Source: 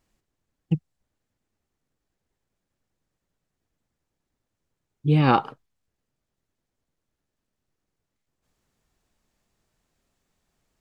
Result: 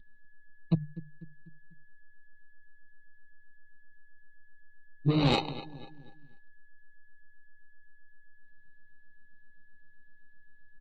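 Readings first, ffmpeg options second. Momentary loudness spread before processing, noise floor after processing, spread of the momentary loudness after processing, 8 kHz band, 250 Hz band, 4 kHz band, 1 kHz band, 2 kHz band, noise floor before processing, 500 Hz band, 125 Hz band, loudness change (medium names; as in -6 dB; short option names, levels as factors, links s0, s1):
10 LU, -59 dBFS, 21 LU, no reading, -5.0 dB, +3.0 dB, -11.0 dB, -6.0 dB, -83 dBFS, -4.5 dB, -6.5 dB, -7.5 dB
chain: -filter_complex "[0:a]asplit=2[s0][s1];[s1]acrusher=bits=5:mode=log:mix=0:aa=0.000001,volume=0.266[s2];[s0][s2]amix=inputs=2:normalize=0,alimiter=limit=0.299:level=0:latency=1:release=74,equalizer=f=730:w=6.2:g=-6.5,aeval=exprs='val(0)+0.00631*sin(2*PI*1700*n/s)':c=same,bandreject=f=50:t=h:w=6,bandreject=f=100:t=h:w=6,bandreject=f=150:t=h:w=6,acrossover=split=290|990[s3][s4][s5];[s3]tremolo=f=12:d=0.72[s6];[s4]asoftclip=type=tanh:threshold=0.0299[s7];[s5]acrusher=samples=26:mix=1:aa=0.000001[s8];[s6][s7][s8]amix=inputs=3:normalize=0,lowpass=f=3700:t=q:w=6.9,aecho=1:1:247|494|741|988:0.158|0.0761|0.0365|0.0175,volume=7.5,asoftclip=hard,volume=0.133,afftdn=nr=15:nf=-48"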